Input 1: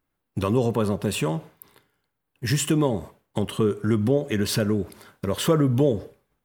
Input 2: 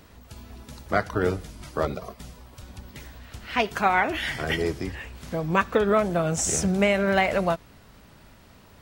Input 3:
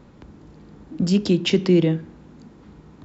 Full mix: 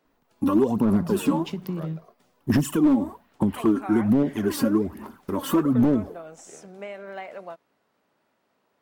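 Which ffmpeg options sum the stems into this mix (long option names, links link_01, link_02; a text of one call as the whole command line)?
ffmpeg -i stem1.wav -i stem2.wav -i stem3.wav -filter_complex "[0:a]equalizer=frequency=125:width_type=o:width=1:gain=-11,equalizer=frequency=250:width_type=o:width=1:gain=12,equalizer=frequency=500:width_type=o:width=1:gain=-8,equalizer=frequency=1000:width_type=o:width=1:gain=9,equalizer=frequency=2000:width_type=o:width=1:gain=-9,equalizer=frequency=4000:width_type=o:width=1:gain=-9,equalizer=frequency=8000:width_type=o:width=1:gain=-6,acrossover=split=380|3000[link_01][link_02][link_03];[link_02]acompressor=threshold=-29dB:ratio=2.5[link_04];[link_01][link_04][link_03]amix=inputs=3:normalize=0,aphaser=in_gain=1:out_gain=1:delay=3.7:decay=0.71:speed=1.2:type=sinusoidal,adelay=50,volume=-1dB[link_05];[1:a]highpass=350,highshelf=frequency=2000:gain=-10,volume=-12.5dB[link_06];[2:a]aeval=exprs='sgn(val(0))*max(abs(val(0))-0.0168,0)':channel_layout=same,equalizer=frequency=150:width=1.7:gain=13,acompressor=threshold=-13dB:ratio=6,volume=-14dB[link_07];[link_05][link_06][link_07]amix=inputs=3:normalize=0,aeval=exprs='clip(val(0),-1,0.251)':channel_layout=same,alimiter=limit=-11dB:level=0:latency=1:release=140" out.wav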